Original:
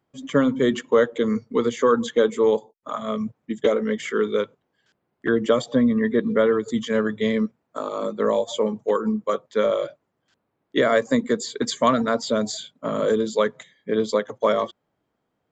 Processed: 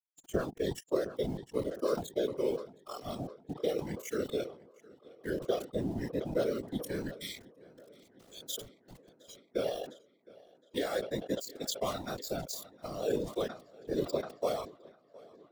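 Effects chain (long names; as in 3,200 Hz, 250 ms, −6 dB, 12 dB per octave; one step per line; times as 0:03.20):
gain on a spectral selection 0:07.17–0:09.37, 210–1,900 Hz −16 dB
downward compressor 2 to 1, threshold −34 dBFS, peak gain reduction 12 dB
low-shelf EQ 140 Hz −8.5 dB
centre clipping without the shift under −32.5 dBFS
noise reduction from a noise print of the clip's start 18 dB
octave-band graphic EQ 125/250/1,000/2,000 Hz +5/−5/−9/−9 dB
random phases in short frames
on a send: tape delay 711 ms, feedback 75%, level −22 dB, low-pass 4,400 Hz
on the sum: level that may fall only so fast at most 130 dB per second
level +2 dB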